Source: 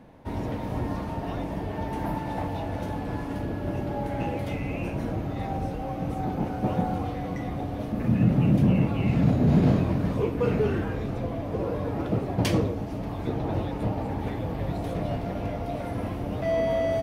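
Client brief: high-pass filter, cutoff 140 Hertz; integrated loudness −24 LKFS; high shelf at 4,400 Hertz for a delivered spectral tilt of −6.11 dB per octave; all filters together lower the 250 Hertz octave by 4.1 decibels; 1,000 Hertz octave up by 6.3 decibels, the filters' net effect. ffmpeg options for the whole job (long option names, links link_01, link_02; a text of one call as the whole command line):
ffmpeg -i in.wav -af "highpass=140,equalizer=frequency=250:width_type=o:gain=-5,equalizer=frequency=1000:width_type=o:gain=9,highshelf=frequency=4400:gain=3.5,volume=5dB" out.wav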